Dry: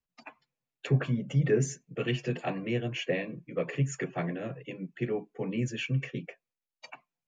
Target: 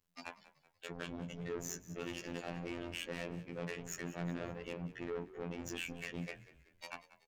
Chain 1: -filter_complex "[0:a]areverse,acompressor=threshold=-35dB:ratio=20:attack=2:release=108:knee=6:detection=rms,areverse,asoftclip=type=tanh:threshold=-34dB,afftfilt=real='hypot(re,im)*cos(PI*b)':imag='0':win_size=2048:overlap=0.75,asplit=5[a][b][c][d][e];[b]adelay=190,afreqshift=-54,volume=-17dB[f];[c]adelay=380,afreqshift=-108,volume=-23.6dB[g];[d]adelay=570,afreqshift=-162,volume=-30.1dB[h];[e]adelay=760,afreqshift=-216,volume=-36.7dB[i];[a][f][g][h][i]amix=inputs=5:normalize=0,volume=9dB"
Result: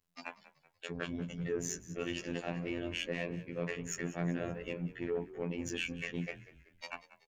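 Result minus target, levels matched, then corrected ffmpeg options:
soft clip: distortion -12 dB
-filter_complex "[0:a]areverse,acompressor=threshold=-35dB:ratio=20:attack=2:release=108:knee=6:detection=rms,areverse,asoftclip=type=tanh:threshold=-44.5dB,afftfilt=real='hypot(re,im)*cos(PI*b)':imag='0':win_size=2048:overlap=0.75,asplit=5[a][b][c][d][e];[b]adelay=190,afreqshift=-54,volume=-17dB[f];[c]adelay=380,afreqshift=-108,volume=-23.6dB[g];[d]adelay=570,afreqshift=-162,volume=-30.1dB[h];[e]adelay=760,afreqshift=-216,volume=-36.7dB[i];[a][f][g][h][i]amix=inputs=5:normalize=0,volume=9dB"

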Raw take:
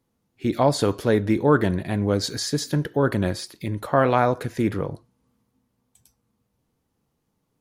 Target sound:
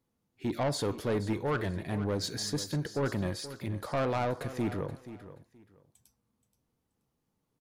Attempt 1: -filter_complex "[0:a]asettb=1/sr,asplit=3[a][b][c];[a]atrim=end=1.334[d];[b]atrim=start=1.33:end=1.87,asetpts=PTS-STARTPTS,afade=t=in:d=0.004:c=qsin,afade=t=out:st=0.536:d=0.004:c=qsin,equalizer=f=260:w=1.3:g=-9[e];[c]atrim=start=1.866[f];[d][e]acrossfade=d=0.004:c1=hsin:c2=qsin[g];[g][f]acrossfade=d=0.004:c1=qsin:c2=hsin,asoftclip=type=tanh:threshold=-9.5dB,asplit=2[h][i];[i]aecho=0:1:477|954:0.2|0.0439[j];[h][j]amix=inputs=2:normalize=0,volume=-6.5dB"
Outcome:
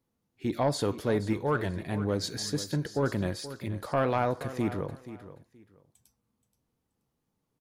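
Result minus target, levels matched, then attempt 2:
soft clip: distortion -9 dB
-filter_complex "[0:a]asettb=1/sr,asplit=3[a][b][c];[a]atrim=end=1.334[d];[b]atrim=start=1.33:end=1.87,asetpts=PTS-STARTPTS,afade=t=in:d=0.004:c=qsin,afade=t=out:st=0.536:d=0.004:c=qsin,equalizer=f=260:w=1.3:g=-9[e];[c]atrim=start=1.866[f];[d][e]acrossfade=d=0.004:c1=hsin:c2=qsin[g];[g][f]acrossfade=d=0.004:c1=qsin:c2=hsin,asoftclip=type=tanh:threshold=-18dB,asplit=2[h][i];[i]aecho=0:1:477|954:0.2|0.0439[j];[h][j]amix=inputs=2:normalize=0,volume=-6.5dB"

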